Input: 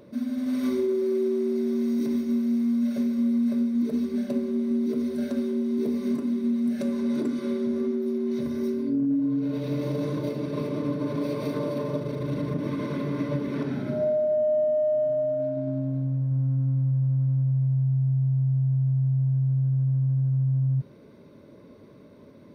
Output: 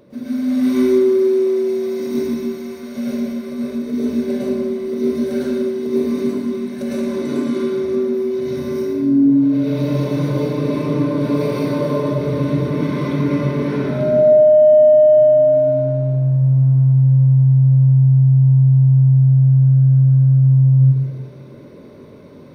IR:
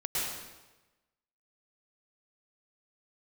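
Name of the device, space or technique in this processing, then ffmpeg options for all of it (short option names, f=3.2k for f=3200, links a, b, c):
bathroom: -filter_complex "[1:a]atrim=start_sample=2205[a];[0:a][a]afir=irnorm=-1:irlink=0,volume=3dB"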